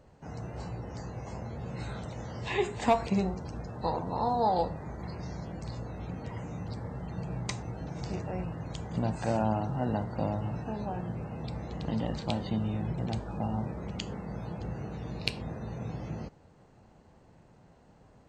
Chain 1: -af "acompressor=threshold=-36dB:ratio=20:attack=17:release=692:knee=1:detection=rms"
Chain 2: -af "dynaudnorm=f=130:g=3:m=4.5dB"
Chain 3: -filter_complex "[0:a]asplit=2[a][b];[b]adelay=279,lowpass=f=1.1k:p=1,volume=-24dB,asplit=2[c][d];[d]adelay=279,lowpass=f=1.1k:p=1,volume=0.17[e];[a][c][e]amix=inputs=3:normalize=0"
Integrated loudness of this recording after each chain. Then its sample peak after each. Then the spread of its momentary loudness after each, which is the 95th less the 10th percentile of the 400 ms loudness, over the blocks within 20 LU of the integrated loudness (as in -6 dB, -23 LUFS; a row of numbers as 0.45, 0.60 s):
-43.5, -30.0, -34.5 LUFS; -19.0, -4.5, -8.0 dBFS; 6, 11, 11 LU